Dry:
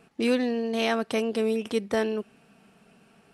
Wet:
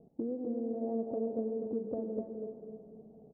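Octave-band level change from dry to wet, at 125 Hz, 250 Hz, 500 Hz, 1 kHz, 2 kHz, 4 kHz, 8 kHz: can't be measured, −8.0 dB, −9.0 dB, −15.0 dB, below −40 dB, below −40 dB, below −35 dB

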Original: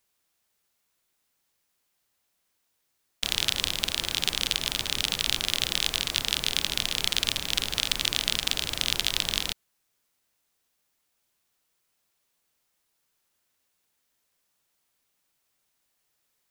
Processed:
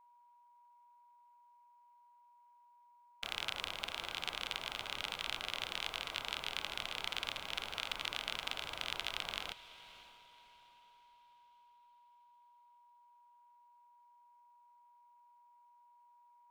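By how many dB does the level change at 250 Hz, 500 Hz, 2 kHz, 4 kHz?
−15.5, −8.5, −9.0, −14.5 decibels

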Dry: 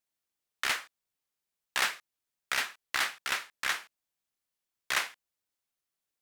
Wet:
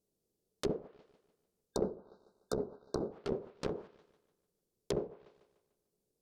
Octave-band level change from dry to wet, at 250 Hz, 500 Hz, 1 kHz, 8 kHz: +16.0, +12.5, −12.0, −15.0 decibels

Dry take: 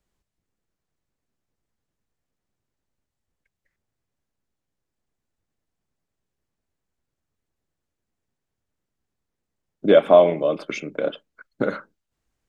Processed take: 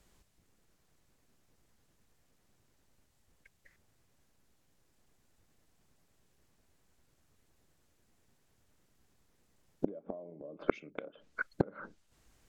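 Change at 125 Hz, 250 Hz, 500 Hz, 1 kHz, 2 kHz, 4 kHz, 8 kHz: −9.0 dB, −12.5 dB, −22.0 dB, −18.5 dB, −9.5 dB, −25.0 dB, can't be measured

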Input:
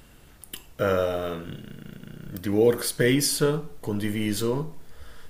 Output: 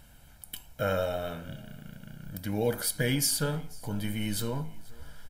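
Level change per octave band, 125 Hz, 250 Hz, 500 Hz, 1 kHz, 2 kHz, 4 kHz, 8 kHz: −3.0, −7.0, −8.5, −4.0, −4.5, −3.5, −1.5 decibels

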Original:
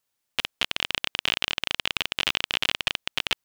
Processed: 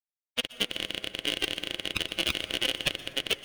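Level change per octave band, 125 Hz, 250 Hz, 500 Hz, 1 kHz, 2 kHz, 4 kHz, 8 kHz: +0.5, +4.0, +3.0, −8.5, −5.0, −3.0, −0.5 decibels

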